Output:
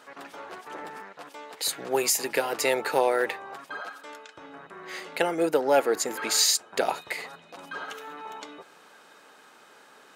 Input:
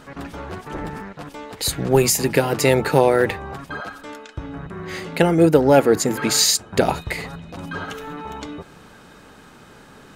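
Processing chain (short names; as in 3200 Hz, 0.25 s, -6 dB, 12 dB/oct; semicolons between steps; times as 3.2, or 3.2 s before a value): HPF 490 Hz 12 dB/oct; gain -5 dB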